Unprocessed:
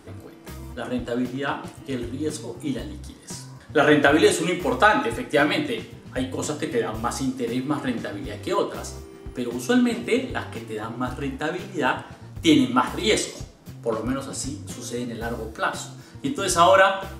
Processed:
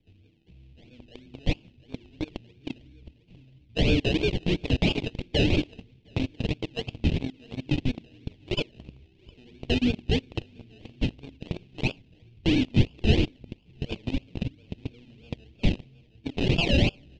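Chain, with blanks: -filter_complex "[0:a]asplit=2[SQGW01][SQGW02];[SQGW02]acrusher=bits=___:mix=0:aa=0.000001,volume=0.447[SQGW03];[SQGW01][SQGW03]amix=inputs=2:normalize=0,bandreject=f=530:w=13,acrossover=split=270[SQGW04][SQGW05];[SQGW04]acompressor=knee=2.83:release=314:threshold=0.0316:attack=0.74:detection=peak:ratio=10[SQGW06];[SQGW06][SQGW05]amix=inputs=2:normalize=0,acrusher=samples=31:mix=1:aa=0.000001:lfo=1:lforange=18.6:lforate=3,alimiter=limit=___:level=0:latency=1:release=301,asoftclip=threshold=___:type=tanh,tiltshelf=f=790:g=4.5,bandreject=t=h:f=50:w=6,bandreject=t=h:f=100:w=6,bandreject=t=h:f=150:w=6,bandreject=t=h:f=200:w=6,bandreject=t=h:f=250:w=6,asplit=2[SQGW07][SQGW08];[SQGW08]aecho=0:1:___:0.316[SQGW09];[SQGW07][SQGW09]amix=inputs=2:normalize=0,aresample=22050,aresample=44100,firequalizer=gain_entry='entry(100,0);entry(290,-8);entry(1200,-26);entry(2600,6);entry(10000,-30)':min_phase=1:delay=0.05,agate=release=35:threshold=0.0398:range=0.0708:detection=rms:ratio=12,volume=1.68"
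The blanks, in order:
6, 0.398, 0.15, 716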